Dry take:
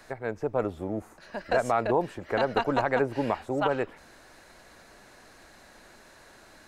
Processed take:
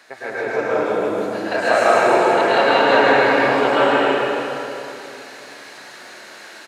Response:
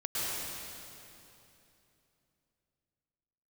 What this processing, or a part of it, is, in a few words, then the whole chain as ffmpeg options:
stadium PA: -filter_complex "[0:a]highpass=250,equalizer=f=2.9k:t=o:w=2.5:g=8,aecho=1:1:160.3|271.1:0.562|0.355[a];[1:a]atrim=start_sample=2205[b];[a][b]afir=irnorm=-1:irlink=0,volume=1.5dB"

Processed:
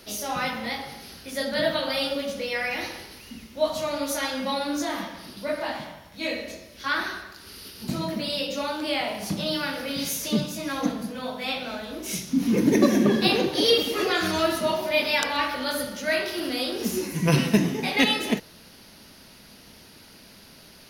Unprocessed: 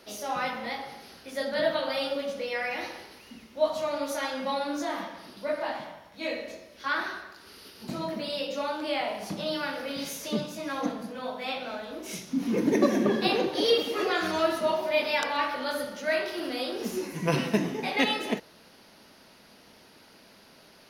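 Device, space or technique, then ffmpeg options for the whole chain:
smiley-face EQ: -af "lowshelf=f=140:g=7.5,equalizer=f=710:t=o:w=2.8:g=-6,highshelf=f=8.9k:g=5.5,volume=6.5dB"

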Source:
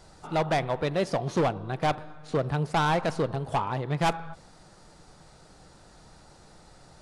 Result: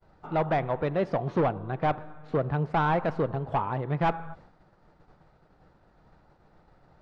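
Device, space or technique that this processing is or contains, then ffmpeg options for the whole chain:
hearing-loss simulation: -af "lowpass=2k,agate=range=-33dB:threshold=-47dB:ratio=3:detection=peak"

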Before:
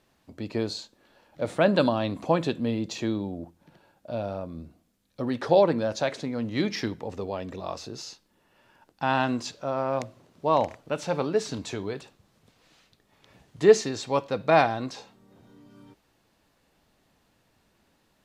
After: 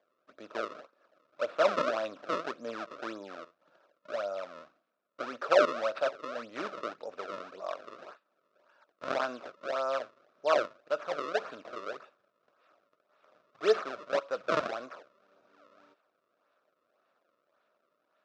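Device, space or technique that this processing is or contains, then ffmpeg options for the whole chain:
circuit-bent sampling toy: -af "acrusher=samples=32:mix=1:aa=0.000001:lfo=1:lforange=51.2:lforate=1.8,highpass=570,equalizer=f=600:t=q:w=4:g=8,equalizer=f=850:t=q:w=4:g=-8,equalizer=f=1.3k:t=q:w=4:g=9,equalizer=f=2k:t=q:w=4:g=-7,equalizer=f=3.1k:t=q:w=4:g=-6,equalizer=f=4.4k:t=q:w=4:g=-5,lowpass=f=4.7k:w=0.5412,lowpass=f=4.7k:w=1.3066,volume=-4dB"

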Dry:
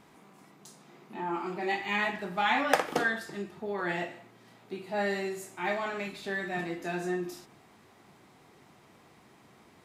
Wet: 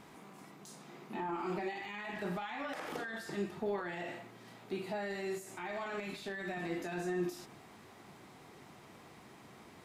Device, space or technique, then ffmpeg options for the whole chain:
de-esser from a sidechain: -filter_complex "[0:a]asplit=2[a][b];[b]highpass=f=4.7k:p=1,apad=whole_len=434123[c];[a][c]sidechaincompress=threshold=-51dB:ratio=12:attack=1.1:release=31,volume=2.5dB"

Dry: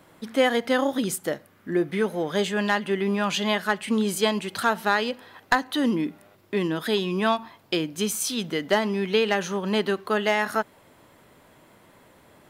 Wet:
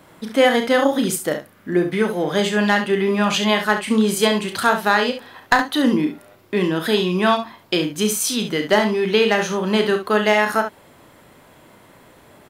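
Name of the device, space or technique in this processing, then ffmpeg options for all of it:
slapback doubling: -filter_complex "[0:a]asplit=3[a][b][c];[b]adelay=33,volume=-8dB[d];[c]adelay=68,volume=-9dB[e];[a][d][e]amix=inputs=3:normalize=0,volume=5dB"

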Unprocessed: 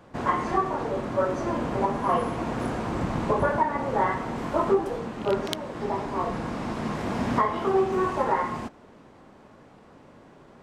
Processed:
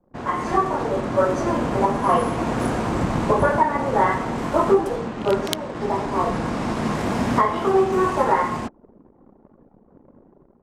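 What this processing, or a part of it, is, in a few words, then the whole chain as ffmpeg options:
voice memo with heavy noise removal: -af "anlmdn=0.0398,dynaudnorm=f=280:g=3:m=8.5dB,adynamicequalizer=threshold=0.00631:dfrequency=6300:dqfactor=0.7:tfrequency=6300:tqfactor=0.7:attack=5:release=100:ratio=0.375:range=3:mode=boostabove:tftype=highshelf,volume=-2dB"

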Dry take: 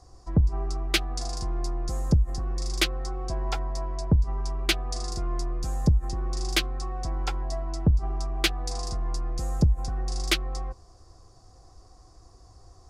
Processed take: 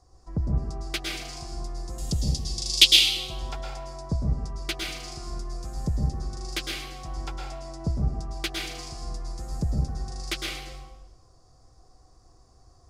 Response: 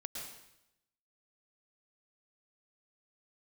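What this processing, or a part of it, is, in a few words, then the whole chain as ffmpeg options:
bathroom: -filter_complex "[0:a]asettb=1/sr,asplit=3[a][b][c];[a]atrim=end=1.984[d];[b]atrim=start=1.98:end=2.99,asetpts=PTS-STARTPTS,afade=t=in:d=0.004:c=qsin,afade=t=out:st=1.006:d=0.004:c=qsin,highshelf=f=2.2k:t=q:w=3:g=13[e];[c]atrim=start=2.986[f];[d][e]acrossfade=d=0.004:c1=hsin:c2=qsin[g];[g][f]acrossfade=d=0.004:c1=qsin:c2=hsin[h];[1:a]atrim=start_sample=2205[i];[h][i]afir=irnorm=-1:irlink=0,volume=-2.5dB"

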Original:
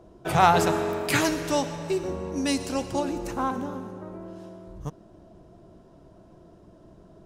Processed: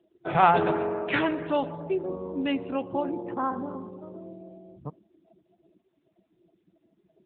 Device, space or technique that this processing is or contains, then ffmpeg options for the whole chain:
mobile call with aggressive noise cancelling: -filter_complex "[0:a]asplit=3[a][b][c];[a]afade=t=out:st=1:d=0.02[d];[b]lowpass=f=8.8k:w=0.5412,lowpass=f=8.8k:w=1.3066,afade=t=in:st=1:d=0.02,afade=t=out:st=1.9:d=0.02[e];[c]afade=t=in:st=1.9:d=0.02[f];[d][e][f]amix=inputs=3:normalize=0,highpass=f=170:p=1,afftdn=nr=31:nf=-39" -ar 8000 -c:a libopencore_amrnb -b:a 10200

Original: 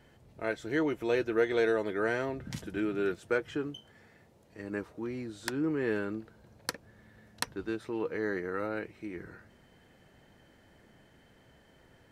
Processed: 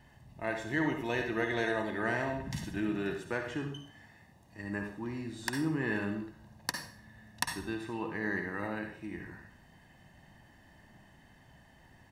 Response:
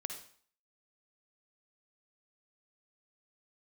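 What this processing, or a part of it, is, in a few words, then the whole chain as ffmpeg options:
microphone above a desk: -filter_complex "[0:a]aecho=1:1:1.1:0.65[a];[1:a]atrim=start_sample=2205[b];[a][b]afir=irnorm=-1:irlink=0,volume=1dB"

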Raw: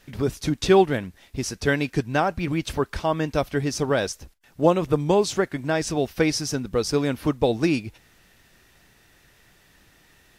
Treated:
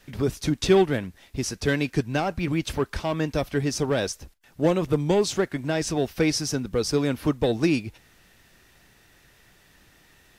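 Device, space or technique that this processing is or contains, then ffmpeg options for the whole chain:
one-band saturation: -filter_complex "[0:a]acrossover=split=450|2300[a][b][c];[b]asoftclip=type=tanh:threshold=-24.5dB[d];[a][d][c]amix=inputs=3:normalize=0"

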